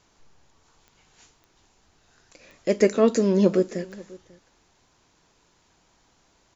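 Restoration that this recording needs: de-click; inverse comb 0.543 s -22.5 dB

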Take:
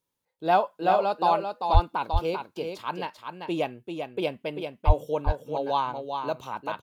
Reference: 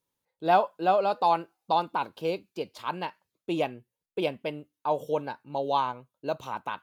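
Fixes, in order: de-plosive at 1.73/4.86; inverse comb 0.392 s -6 dB

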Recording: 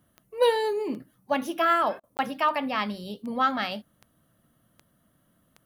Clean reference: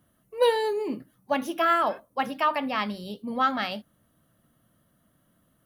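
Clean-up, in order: de-click; interpolate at 2.17, 19 ms; interpolate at 2, 33 ms

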